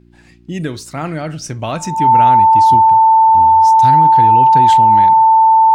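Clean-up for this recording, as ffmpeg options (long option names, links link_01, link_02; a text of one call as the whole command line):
ffmpeg -i in.wav -af "bandreject=frequency=58.9:width_type=h:width=4,bandreject=frequency=117.8:width_type=h:width=4,bandreject=frequency=176.7:width_type=h:width=4,bandreject=frequency=235.6:width_type=h:width=4,bandreject=frequency=294.5:width_type=h:width=4,bandreject=frequency=353.4:width_type=h:width=4,bandreject=frequency=890:width=30" out.wav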